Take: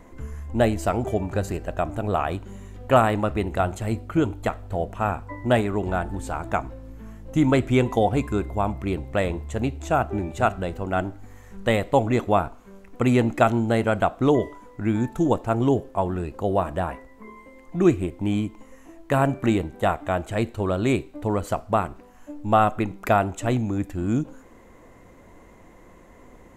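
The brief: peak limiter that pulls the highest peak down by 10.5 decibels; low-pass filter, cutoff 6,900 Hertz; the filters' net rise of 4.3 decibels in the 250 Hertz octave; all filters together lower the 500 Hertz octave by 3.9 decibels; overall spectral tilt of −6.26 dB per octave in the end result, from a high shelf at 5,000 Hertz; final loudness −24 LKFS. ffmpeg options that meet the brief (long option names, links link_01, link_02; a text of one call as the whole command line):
ffmpeg -i in.wav -af "lowpass=6900,equalizer=frequency=250:width_type=o:gain=7.5,equalizer=frequency=500:width_type=o:gain=-8,highshelf=frequency=5000:gain=-6.5,volume=3dB,alimiter=limit=-13dB:level=0:latency=1" out.wav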